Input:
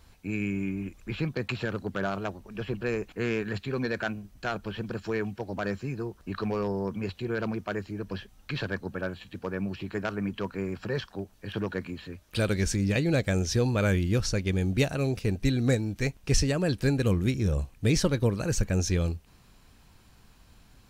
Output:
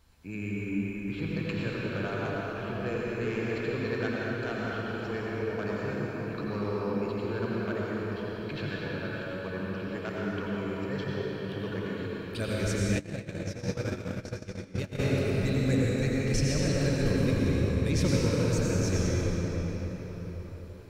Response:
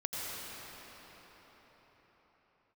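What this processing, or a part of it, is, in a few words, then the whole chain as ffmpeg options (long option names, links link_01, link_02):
cathedral: -filter_complex "[1:a]atrim=start_sample=2205[link_01];[0:a][link_01]afir=irnorm=-1:irlink=0,bandreject=frequency=730:width=22,asplit=3[link_02][link_03][link_04];[link_02]afade=type=out:start_time=12.98:duration=0.02[link_05];[link_03]agate=range=-22dB:threshold=-18dB:ratio=16:detection=peak,afade=type=in:start_time=12.98:duration=0.02,afade=type=out:start_time=14.98:duration=0.02[link_06];[link_04]afade=type=in:start_time=14.98:duration=0.02[link_07];[link_05][link_06][link_07]amix=inputs=3:normalize=0,volume=-5dB"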